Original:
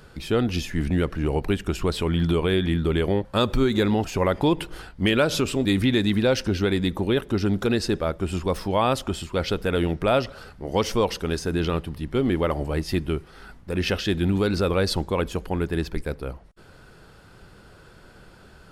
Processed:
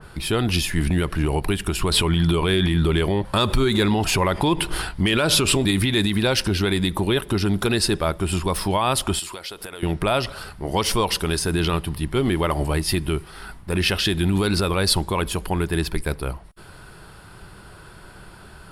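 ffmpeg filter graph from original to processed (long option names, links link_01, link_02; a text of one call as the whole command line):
ffmpeg -i in.wav -filter_complex "[0:a]asettb=1/sr,asplit=3[link_01][link_02][link_03];[link_01]atrim=end=1.914[link_04];[link_02]atrim=start=1.91:end=5.71,asetpts=PTS-STARTPTS,afade=type=in:duration=0.004:curve=qsin,afade=type=out:start_time=3.796:duration=0.004:curve=qsin,highshelf=frequency=11000:gain=-6.5,acontrast=38[link_05];[link_03]atrim=start=5.706[link_06];[link_04][link_05]acrossfade=duration=0.004:curve1=hsin:curve2=qsin[link_07];[link_07][link_06]acrossfade=duration=0.004:curve1=qsin:curve2=hsin,asettb=1/sr,asplit=3[link_08][link_09][link_10];[link_08]atrim=end=9.194[link_11];[link_09]atrim=start=9.19:end=9.83,asetpts=PTS-STARTPTS,afade=type=in:duration=0.004:curve=qsin,afade=type=out:start_time=0.636:duration=0.004:curve=qsin,bass=frequency=250:gain=-15,treble=frequency=4000:gain=6,acompressor=threshold=-37dB:ratio=8:attack=3.2:release=140:knee=1:detection=peak[link_12];[link_10]atrim=start=9.826[link_13];[link_11][link_12]acrossfade=duration=0.004:curve1=hsin:curve2=qsin[link_14];[link_14][link_13]acrossfade=duration=0.004:curve1=qsin:curve2=hsin,equalizer=frequency=250:width_type=o:width=0.33:gain=-6,equalizer=frequency=500:width_type=o:width=0.33:gain=-7,equalizer=frequency=1000:width_type=o:width=0.33:gain=4,equalizer=frequency=6300:width_type=o:width=0.33:gain=-6,equalizer=frequency=10000:width_type=o:width=0.33:gain=10,alimiter=limit=-17dB:level=0:latency=1:release=102,adynamicequalizer=threshold=0.00794:dfrequency=2400:dqfactor=0.7:tfrequency=2400:tqfactor=0.7:attack=5:release=100:ratio=0.375:range=2.5:mode=boostabove:tftype=highshelf,volume=6dB" out.wav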